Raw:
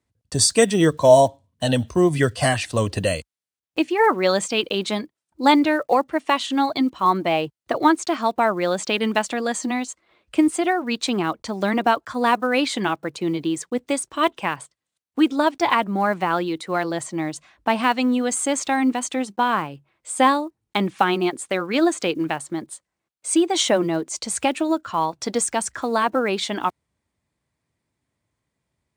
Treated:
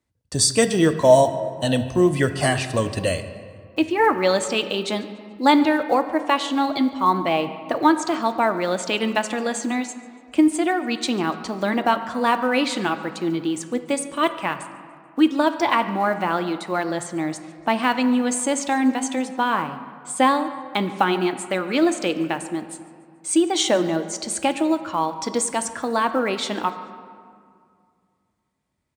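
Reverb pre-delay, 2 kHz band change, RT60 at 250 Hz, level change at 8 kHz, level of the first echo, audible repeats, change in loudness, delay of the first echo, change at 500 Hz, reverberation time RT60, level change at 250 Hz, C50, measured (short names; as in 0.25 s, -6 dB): 3 ms, -0.5 dB, 2.6 s, -0.5 dB, -21.5 dB, 1, -0.5 dB, 0.144 s, -0.5 dB, 2.2 s, +0.5 dB, 11.0 dB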